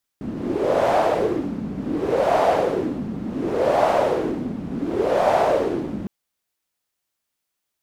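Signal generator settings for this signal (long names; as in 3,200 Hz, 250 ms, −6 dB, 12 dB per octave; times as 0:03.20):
wind from filtered noise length 5.86 s, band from 210 Hz, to 690 Hz, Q 4.1, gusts 4, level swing 10.5 dB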